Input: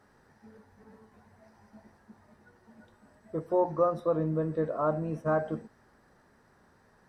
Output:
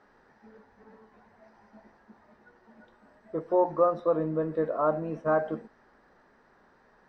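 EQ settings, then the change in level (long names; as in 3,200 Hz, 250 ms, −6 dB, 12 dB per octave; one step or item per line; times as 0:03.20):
high-frequency loss of the air 150 metres
parametric band 97 Hz −14 dB 1.7 octaves
+4.0 dB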